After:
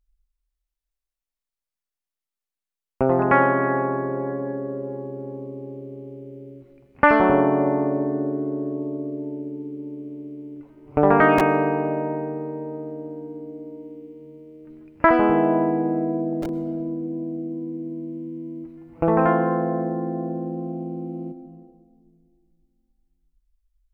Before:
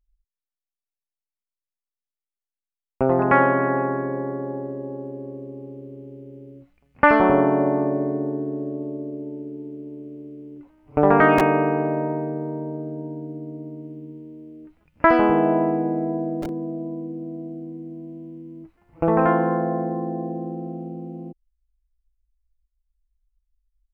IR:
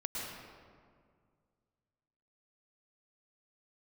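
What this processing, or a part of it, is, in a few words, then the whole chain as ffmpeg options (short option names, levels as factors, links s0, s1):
compressed reverb return: -filter_complex "[0:a]asettb=1/sr,asplit=3[s0][s1][s2];[s0]atrim=end=15.094[s3];[s1]atrim=start=15.09:end=16.33,asetpts=PTS-STARTPTS,afade=t=in:d=0.004:c=qsin,afade=t=out:st=1.236:d=0.004:c=qsin,acrossover=split=2800[s4][s5];[s5]acompressor=threshold=0.00501:ratio=4:attack=1:release=60[s6];[s4][s6]amix=inputs=2:normalize=0[s7];[s2]atrim=start=16.326[s8];[s3][s7]acrossfade=d=0.004:c1=hsin:c2=qsin[s9];[s9][s8]acrossfade=d=0.004:c1=qsin:c2=hsin,asplit=2[s10][s11];[1:a]atrim=start_sample=2205[s12];[s11][s12]afir=irnorm=-1:irlink=0,acompressor=threshold=0.0501:ratio=10,volume=0.473[s13];[s10][s13]amix=inputs=2:normalize=0,volume=0.891"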